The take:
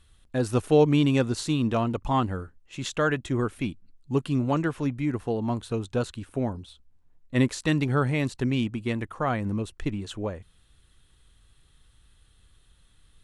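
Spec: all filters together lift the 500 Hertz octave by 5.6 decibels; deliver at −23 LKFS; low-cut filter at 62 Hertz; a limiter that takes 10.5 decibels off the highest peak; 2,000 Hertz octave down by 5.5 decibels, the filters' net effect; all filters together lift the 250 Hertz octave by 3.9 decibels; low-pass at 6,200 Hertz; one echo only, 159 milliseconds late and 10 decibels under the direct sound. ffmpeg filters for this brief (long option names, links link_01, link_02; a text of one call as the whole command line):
ffmpeg -i in.wav -af "highpass=62,lowpass=6200,equalizer=frequency=250:width_type=o:gain=3,equalizer=frequency=500:width_type=o:gain=6,equalizer=frequency=2000:width_type=o:gain=-8,alimiter=limit=-14.5dB:level=0:latency=1,aecho=1:1:159:0.316,volume=2.5dB" out.wav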